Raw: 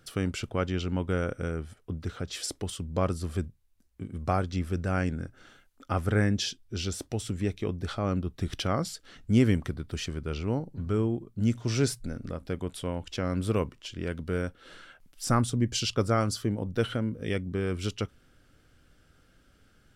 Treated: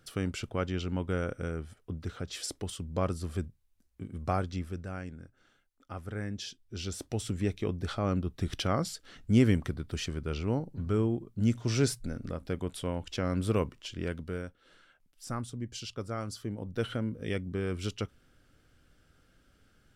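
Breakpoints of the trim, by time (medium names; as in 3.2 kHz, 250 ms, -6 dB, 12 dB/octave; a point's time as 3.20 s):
4.46 s -3 dB
5.02 s -12.5 dB
6.18 s -12.5 dB
7.19 s -1 dB
14.06 s -1 dB
14.61 s -11.5 dB
16.08 s -11.5 dB
17.00 s -3 dB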